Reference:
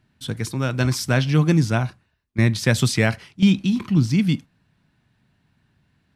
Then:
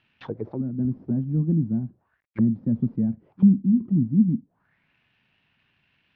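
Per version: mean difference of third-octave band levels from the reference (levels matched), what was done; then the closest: 14.0 dB: CVSD 32 kbps; low shelf 270 Hz -8.5 dB; envelope low-pass 230–2800 Hz down, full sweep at -25.5 dBFS; gain -3.5 dB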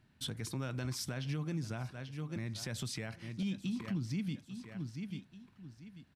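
5.0 dB: on a send: feedback echo 0.839 s, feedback 30%, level -19.5 dB; on the sum: compressor 5:1, threshold -30 dBFS, peak gain reduction 16.5 dB; limiter -25 dBFS, peak gain reduction 9.5 dB; gain -4 dB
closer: second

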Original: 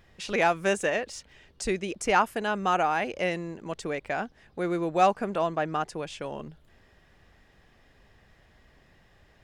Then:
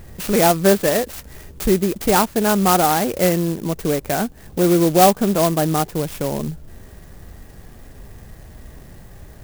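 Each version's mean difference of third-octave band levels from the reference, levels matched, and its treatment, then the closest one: 8.5 dB: low shelf 450 Hz +9.5 dB; harmonic-percussive split harmonic +5 dB; in parallel at +3 dB: compressor, threshold -33 dBFS, peak gain reduction 21.5 dB; on the sum: clock jitter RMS 0.085 ms; gain +1 dB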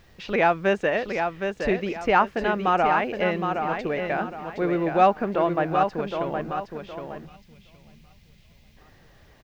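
6.0 dB: feedback echo 0.766 s, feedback 32%, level -6 dB; added noise violet -47 dBFS; air absorption 250 m; spectral gain 7.26–8.77, 240–2000 Hz -13 dB; gain +4.5 dB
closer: second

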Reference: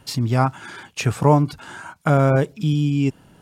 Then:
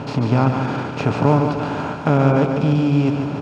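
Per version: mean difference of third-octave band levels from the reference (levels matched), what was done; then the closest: 10.5 dB: per-bin compression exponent 0.4; LPF 3600 Hz 12 dB/oct; bell 230 Hz +6 dB 1.6 oct; on a send: feedback echo 0.146 s, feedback 56%, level -6.5 dB; on the sum: gain -5.5 dB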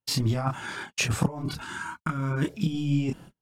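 7.0 dB: spectral gain 1.62–2.46, 400–880 Hz -14 dB; gate -39 dBFS, range -42 dB; negative-ratio compressor -21 dBFS, ratio -0.5; chorus voices 4, 0.97 Hz, delay 27 ms, depth 3 ms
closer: second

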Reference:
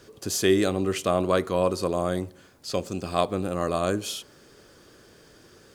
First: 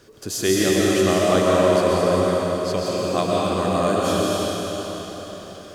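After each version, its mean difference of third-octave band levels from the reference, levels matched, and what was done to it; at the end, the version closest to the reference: 9.0 dB: digital reverb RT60 4.6 s, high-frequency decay 0.95×, pre-delay 85 ms, DRR -6 dB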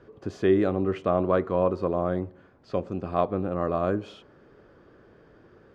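6.5 dB: LPF 1500 Hz 12 dB/oct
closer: second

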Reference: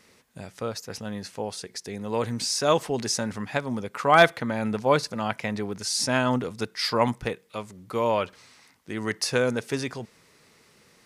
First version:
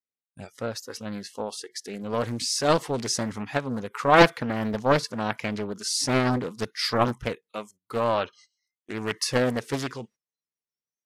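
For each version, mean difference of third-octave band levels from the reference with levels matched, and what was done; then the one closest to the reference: 3.5 dB: spectral noise reduction 26 dB; gate -50 dBFS, range -20 dB; Doppler distortion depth 0.8 ms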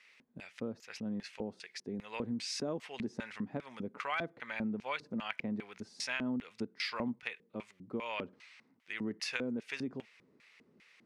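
8.0 dB: LFO band-pass square 2.5 Hz 260–2400 Hz; bell 290 Hz -3.5 dB 0.23 oct; compressor 5:1, threshold -36 dBFS, peak gain reduction 13 dB; gain +2.5 dB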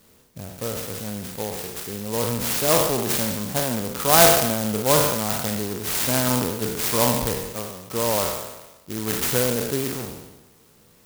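11.5 dB: spectral trails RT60 1.10 s; low shelf 84 Hz +9.5 dB; clock jitter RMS 0.15 ms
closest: first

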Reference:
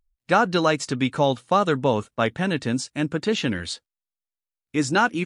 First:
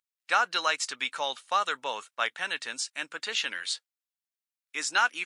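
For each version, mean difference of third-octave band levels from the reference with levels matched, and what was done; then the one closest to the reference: 10.0 dB: HPF 1300 Hz 12 dB/oct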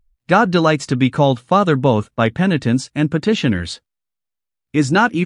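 2.5 dB: tone controls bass +6 dB, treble -4 dB; gain +5 dB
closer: second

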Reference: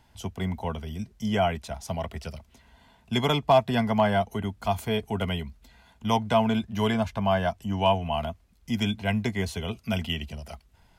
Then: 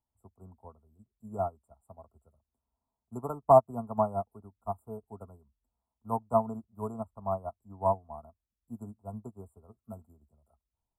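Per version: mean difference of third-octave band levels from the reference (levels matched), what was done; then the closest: 13.5 dB: brick-wall FIR band-stop 1400–7200 Hz; bell 170 Hz -11.5 dB 0.25 oct; upward expander 2.5:1, over -36 dBFS; gain +1.5 dB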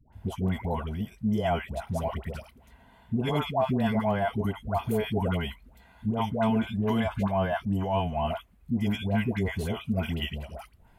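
8.5 dB: bell 5400 Hz -13 dB 1.3 oct; limiter -20 dBFS, peak gain reduction 9 dB; dispersion highs, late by 0.129 s, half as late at 740 Hz; gain +2 dB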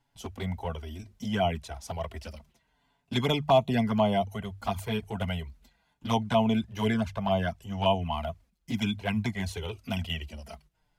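2.5 dB: notches 50/100/150 Hz; gate -52 dBFS, range -10 dB; envelope flanger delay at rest 7.2 ms, full sweep at -19 dBFS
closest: third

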